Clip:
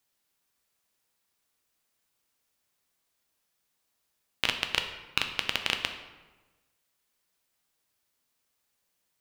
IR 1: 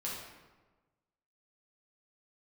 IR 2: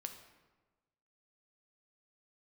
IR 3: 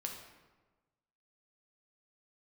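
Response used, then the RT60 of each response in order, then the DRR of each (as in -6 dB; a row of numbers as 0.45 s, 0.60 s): 2; 1.3 s, 1.3 s, 1.3 s; -6.0 dB, 5.5 dB, 1.0 dB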